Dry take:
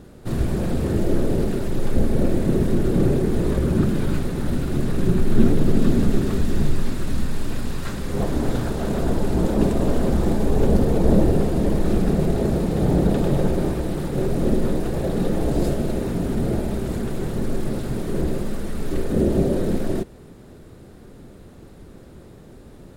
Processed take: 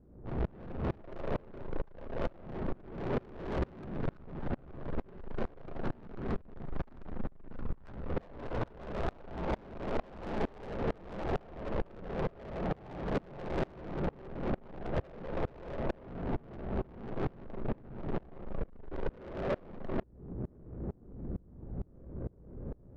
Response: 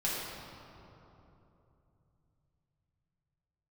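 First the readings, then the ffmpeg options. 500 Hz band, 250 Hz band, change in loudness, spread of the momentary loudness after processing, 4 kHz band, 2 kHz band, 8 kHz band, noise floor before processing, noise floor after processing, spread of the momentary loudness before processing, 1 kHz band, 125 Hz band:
−14.5 dB, −19.0 dB, −17.0 dB, 7 LU, −16.5 dB, −10.0 dB, below −30 dB, −44 dBFS, −56 dBFS, 8 LU, −8.5 dB, −17.5 dB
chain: -filter_complex "[0:a]lowpass=2300,acrossover=split=590|1300[link_01][link_02][link_03];[link_01]acompressor=threshold=-30dB:ratio=16[link_04];[link_04][link_02][link_03]amix=inputs=3:normalize=0,aphaser=in_gain=1:out_gain=1:delay=2:decay=0.25:speed=0.29:type=sinusoidal,aeval=exprs='val(0)+0.00501*(sin(2*PI*60*n/s)+sin(2*PI*2*60*n/s)/2+sin(2*PI*3*60*n/s)/3+sin(2*PI*4*60*n/s)/4+sin(2*PI*5*60*n/s)/5)':channel_layout=same,adynamicsmooth=sensitivity=2:basefreq=510,asoftclip=type=tanh:threshold=-34.5dB,aeval=exprs='val(0)*pow(10,-29*if(lt(mod(-2.2*n/s,1),2*abs(-2.2)/1000),1-mod(-2.2*n/s,1)/(2*abs(-2.2)/1000),(mod(-2.2*n/s,1)-2*abs(-2.2)/1000)/(1-2*abs(-2.2)/1000))/20)':channel_layout=same,volume=9dB"

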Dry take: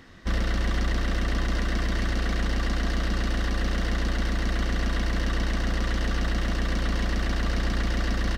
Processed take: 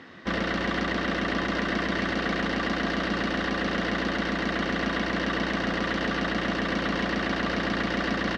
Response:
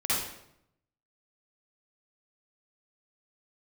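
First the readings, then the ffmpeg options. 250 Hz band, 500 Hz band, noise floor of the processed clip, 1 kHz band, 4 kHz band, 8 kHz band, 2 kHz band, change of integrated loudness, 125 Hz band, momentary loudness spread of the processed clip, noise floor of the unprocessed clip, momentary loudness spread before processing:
+4.0 dB, +5.5 dB, −30 dBFS, +5.5 dB, +2.5 dB, −5.0 dB, +5.0 dB, +1.0 dB, −7.0 dB, 0 LU, −27 dBFS, 1 LU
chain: -af "highpass=190,lowpass=3700,volume=5.5dB"

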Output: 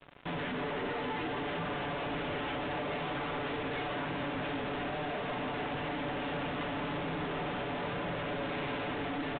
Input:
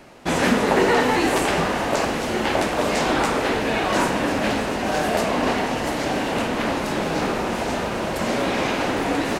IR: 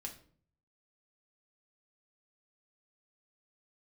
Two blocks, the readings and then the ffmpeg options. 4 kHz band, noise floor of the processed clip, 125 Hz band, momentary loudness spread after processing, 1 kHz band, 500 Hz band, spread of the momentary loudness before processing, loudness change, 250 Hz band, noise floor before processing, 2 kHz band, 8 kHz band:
−13.5 dB, −37 dBFS, −10.0 dB, 1 LU, −14.0 dB, −14.5 dB, 6 LU, −14.0 dB, −14.5 dB, −26 dBFS, −13.0 dB, below −40 dB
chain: -filter_complex "[0:a]highpass=frequency=64:poles=1,bandreject=frequency=60:width_type=h:width=6,bandreject=frequency=120:width_type=h:width=6,bandreject=frequency=180:width_type=h:width=6,bandreject=frequency=240:width_type=h:width=6,bandreject=frequency=300:width_type=h:width=6,aecho=1:1:6.9:0.96,acrossover=split=160[link_01][link_02];[link_01]acontrast=67[link_03];[link_03][link_02]amix=inputs=2:normalize=0,alimiter=limit=-15.5dB:level=0:latency=1:release=267,asoftclip=type=tanh:threshold=-31.5dB,acrusher=bits=5:mix=0:aa=0.5,aecho=1:1:296:0.376,aresample=8000,aresample=44100,volume=-4.5dB"

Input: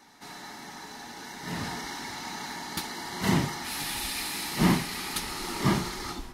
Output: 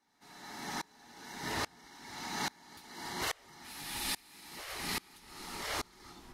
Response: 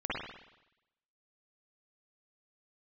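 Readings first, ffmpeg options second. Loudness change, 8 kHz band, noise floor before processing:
−9.5 dB, −7.0 dB, −44 dBFS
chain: -af "afftfilt=real='re*lt(hypot(re,im),0.112)':imag='im*lt(hypot(re,im),0.112)':win_size=1024:overlap=0.75,alimiter=level_in=5dB:limit=-24dB:level=0:latency=1:release=399,volume=-5dB,aeval=exprs='val(0)*pow(10,-30*if(lt(mod(-1.2*n/s,1),2*abs(-1.2)/1000),1-mod(-1.2*n/s,1)/(2*abs(-1.2)/1000),(mod(-1.2*n/s,1)-2*abs(-1.2)/1000)/(1-2*abs(-1.2)/1000))/20)':channel_layout=same,volume=7dB"

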